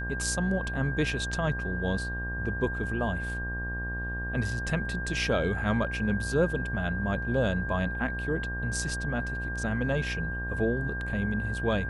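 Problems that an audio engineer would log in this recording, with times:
mains buzz 60 Hz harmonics 20 −35 dBFS
whistle 1,600 Hz −34 dBFS

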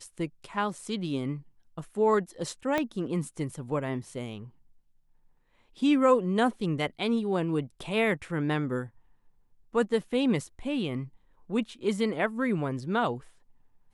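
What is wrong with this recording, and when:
0:02.78: click −14 dBFS

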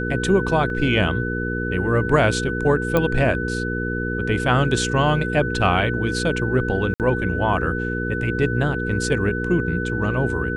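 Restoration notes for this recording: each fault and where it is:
mains hum 60 Hz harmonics 8 −26 dBFS
whistle 1,500 Hz −27 dBFS
0:00.70: drop-out 2 ms
0:02.97: click −7 dBFS
0:06.94–0:07.00: drop-out 58 ms

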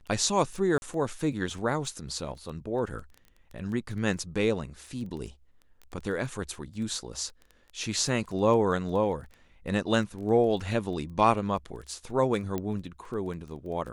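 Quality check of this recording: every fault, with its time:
surface crackle 10 per second −36 dBFS
0:00.78–0:00.82: drop-out 41 ms
0:12.58: click −18 dBFS

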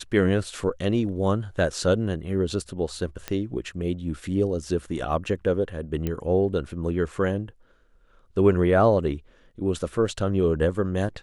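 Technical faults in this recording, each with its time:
0:03.28: click −13 dBFS
0:06.07: click −15 dBFS

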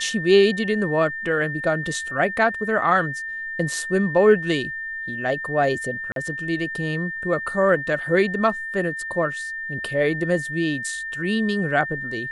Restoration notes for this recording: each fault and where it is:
whistle 1,800 Hz −28 dBFS
0:06.12–0:06.16: drop-out 42 ms

